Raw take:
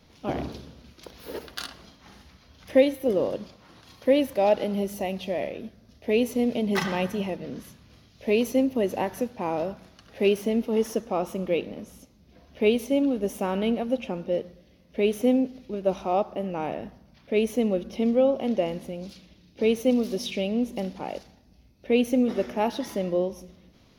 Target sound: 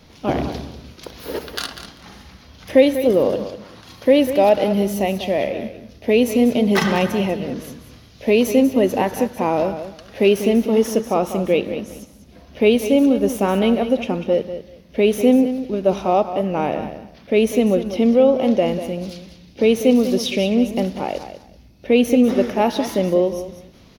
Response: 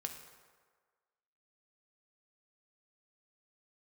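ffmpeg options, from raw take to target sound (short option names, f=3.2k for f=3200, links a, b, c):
-filter_complex "[0:a]asplit=2[a][b];[b]alimiter=limit=-17.5dB:level=0:latency=1,volume=-2.5dB[c];[a][c]amix=inputs=2:normalize=0,aecho=1:1:194|388:0.282|0.0507,volume=4dB"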